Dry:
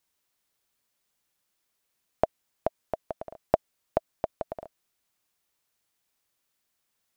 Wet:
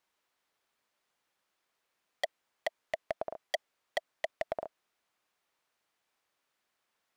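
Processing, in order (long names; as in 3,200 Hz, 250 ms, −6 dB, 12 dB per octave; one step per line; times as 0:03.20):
mid-hump overdrive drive 16 dB, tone 1,400 Hz, clips at −4 dBFS
wave folding −17.5 dBFS
level −3.5 dB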